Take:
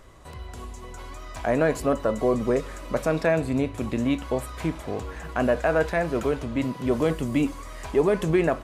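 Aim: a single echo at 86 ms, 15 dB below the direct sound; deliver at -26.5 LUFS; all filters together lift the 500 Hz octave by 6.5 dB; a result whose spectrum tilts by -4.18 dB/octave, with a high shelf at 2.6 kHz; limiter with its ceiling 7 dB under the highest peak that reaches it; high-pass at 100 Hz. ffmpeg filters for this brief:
-af "highpass=100,equalizer=f=500:t=o:g=8,highshelf=f=2600:g=4,alimiter=limit=0.251:level=0:latency=1,aecho=1:1:86:0.178,volume=0.668"

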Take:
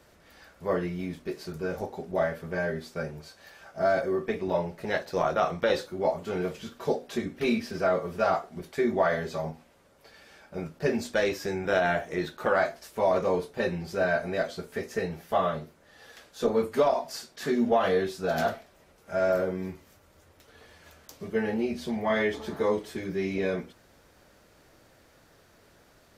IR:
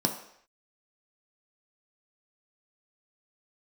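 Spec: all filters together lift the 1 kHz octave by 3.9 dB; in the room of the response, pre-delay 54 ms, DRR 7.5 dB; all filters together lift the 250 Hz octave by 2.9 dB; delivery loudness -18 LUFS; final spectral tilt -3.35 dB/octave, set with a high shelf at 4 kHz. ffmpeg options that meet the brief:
-filter_complex "[0:a]equalizer=f=250:t=o:g=3.5,equalizer=f=1000:t=o:g=6,highshelf=f=4000:g=-9,asplit=2[s0][s1];[1:a]atrim=start_sample=2205,adelay=54[s2];[s1][s2]afir=irnorm=-1:irlink=0,volume=0.158[s3];[s0][s3]amix=inputs=2:normalize=0,volume=2.24"

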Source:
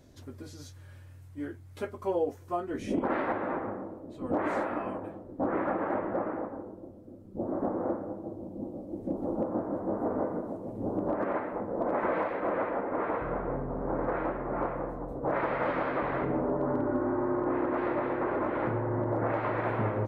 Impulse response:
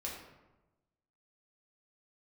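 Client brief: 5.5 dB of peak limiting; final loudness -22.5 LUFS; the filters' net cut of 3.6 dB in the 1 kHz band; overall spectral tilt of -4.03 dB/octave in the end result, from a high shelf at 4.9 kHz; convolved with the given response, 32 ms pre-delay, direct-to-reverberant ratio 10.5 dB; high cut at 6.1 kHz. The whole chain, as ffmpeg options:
-filter_complex "[0:a]lowpass=6100,equalizer=f=1000:t=o:g=-5,highshelf=f=4900:g=5.5,alimiter=level_in=1.12:limit=0.0631:level=0:latency=1,volume=0.891,asplit=2[s0][s1];[1:a]atrim=start_sample=2205,adelay=32[s2];[s1][s2]afir=irnorm=-1:irlink=0,volume=0.282[s3];[s0][s3]amix=inputs=2:normalize=0,volume=4.22"

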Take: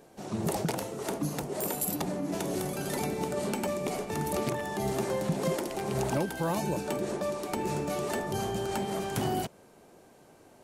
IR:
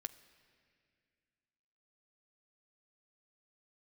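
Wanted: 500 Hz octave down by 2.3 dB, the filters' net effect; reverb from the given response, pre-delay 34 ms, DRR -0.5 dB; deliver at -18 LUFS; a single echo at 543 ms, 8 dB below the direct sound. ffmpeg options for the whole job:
-filter_complex "[0:a]equalizer=f=500:t=o:g=-3,aecho=1:1:543:0.398,asplit=2[s0][s1];[1:a]atrim=start_sample=2205,adelay=34[s2];[s1][s2]afir=irnorm=-1:irlink=0,volume=1.58[s3];[s0][s3]amix=inputs=2:normalize=0,volume=3.55"

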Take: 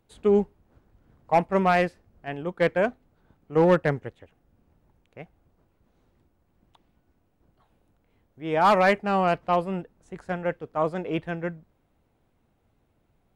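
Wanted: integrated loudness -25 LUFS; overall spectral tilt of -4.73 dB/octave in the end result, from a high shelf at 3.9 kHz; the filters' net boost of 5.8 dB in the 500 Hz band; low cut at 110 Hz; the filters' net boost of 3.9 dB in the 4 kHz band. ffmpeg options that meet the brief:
-af "highpass=110,equalizer=f=500:t=o:g=7,highshelf=f=3900:g=-4.5,equalizer=f=4000:t=o:g=8,volume=0.596"

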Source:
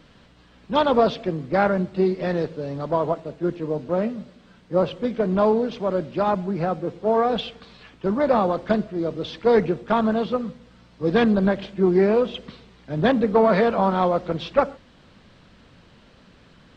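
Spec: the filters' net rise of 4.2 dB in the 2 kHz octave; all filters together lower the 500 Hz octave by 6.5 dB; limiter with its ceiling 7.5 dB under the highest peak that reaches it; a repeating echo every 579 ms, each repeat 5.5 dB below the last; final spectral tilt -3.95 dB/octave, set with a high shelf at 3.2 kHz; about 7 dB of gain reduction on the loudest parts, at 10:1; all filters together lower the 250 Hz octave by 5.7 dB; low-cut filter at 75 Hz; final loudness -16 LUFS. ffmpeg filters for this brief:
-af "highpass=75,equalizer=f=250:t=o:g=-6,equalizer=f=500:t=o:g=-7,equalizer=f=2000:t=o:g=4.5,highshelf=f=3200:g=5.5,acompressor=threshold=0.0708:ratio=10,alimiter=limit=0.1:level=0:latency=1,aecho=1:1:579|1158|1737|2316|2895|3474|4053:0.531|0.281|0.149|0.079|0.0419|0.0222|0.0118,volume=5.31"

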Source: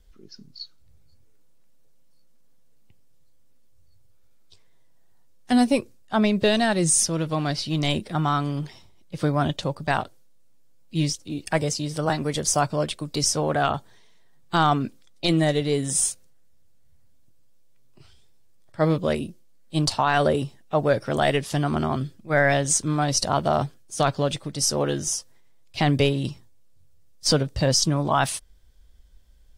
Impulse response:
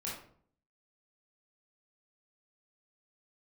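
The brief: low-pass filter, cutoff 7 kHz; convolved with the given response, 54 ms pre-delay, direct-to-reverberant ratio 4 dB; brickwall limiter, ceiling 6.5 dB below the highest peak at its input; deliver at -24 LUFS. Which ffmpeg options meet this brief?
-filter_complex "[0:a]lowpass=7000,alimiter=limit=0.158:level=0:latency=1,asplit=2[s0][s1];[1:a]atrim=start_sample=2205,adelay=54[s2];[s1][s2]afir=irnorm=-1:irlink=0,volume=0.531[s3];[s0][s3]amix=inputs=2:normalize=0,volume=1.19"

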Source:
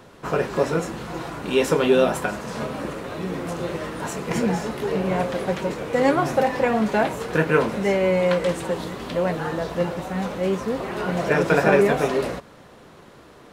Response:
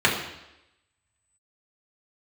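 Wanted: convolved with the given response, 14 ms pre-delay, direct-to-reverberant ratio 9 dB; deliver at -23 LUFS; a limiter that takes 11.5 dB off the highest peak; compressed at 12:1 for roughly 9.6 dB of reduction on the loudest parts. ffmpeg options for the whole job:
-filter_complex "[0:a]acompressor=threshold=0.0794:ratio=12,alimiter=limit=0.0708:level=0:latency=1,asplit=2[s0][s1];[1:a]atrim=start_sample=2205,adelay=14[s2];[s1][s2]afir=irnorm=-1:irlink=0,volume=0.0398[s3];[s0][s3]amix=inputs=2:normalize=0,volume=2.66"

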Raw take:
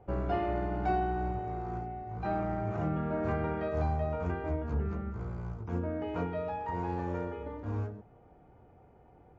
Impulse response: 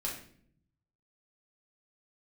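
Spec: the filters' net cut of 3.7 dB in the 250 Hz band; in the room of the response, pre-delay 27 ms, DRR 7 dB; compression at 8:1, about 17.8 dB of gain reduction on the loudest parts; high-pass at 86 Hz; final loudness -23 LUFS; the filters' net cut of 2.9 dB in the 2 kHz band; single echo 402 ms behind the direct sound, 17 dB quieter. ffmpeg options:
-filter_complex "[0:a]highpass=86,equalizer=f=250:t=o:g=-5.5,equalizer=f=2000:t=o:g=-4,acompressor=threshold=0.00447:ratio=8,aecho=1:1:402:0.141,asplit=2[s0][s1];[1:a]atrim=start_sample=2205,adelay=27[s2];[s1][s2]afir=irnorm=-1:irlink=0,volume=0.335[s3];[s0][s3]amix=inputs=2:normalize=0,volume=20"

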